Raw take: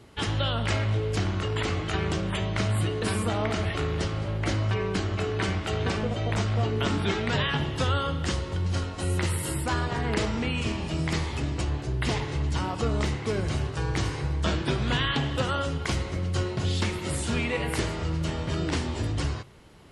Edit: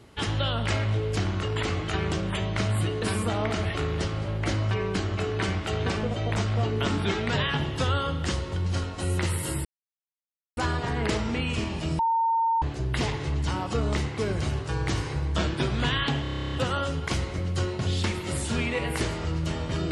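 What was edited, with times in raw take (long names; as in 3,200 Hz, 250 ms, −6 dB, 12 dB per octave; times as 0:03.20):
0:09.65: splice in silence 0.92 s
0:11.07–0:11.70: beep over 911 Hz −20.5 dBFS
0:15.30: stutter 0.03 s, 11 plays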